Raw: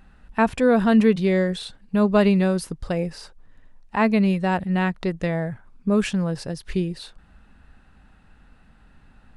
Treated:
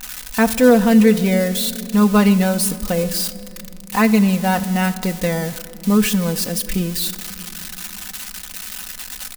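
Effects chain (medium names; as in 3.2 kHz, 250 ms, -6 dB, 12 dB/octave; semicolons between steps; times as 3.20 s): zero-crossing glitches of -19 dBFS; comb 4 ms, depth 64%; on a send: reverberation RT60 2.8 s, pre-delay 5 ms, DRR 14 dB; on the sum: trim +2.5 dB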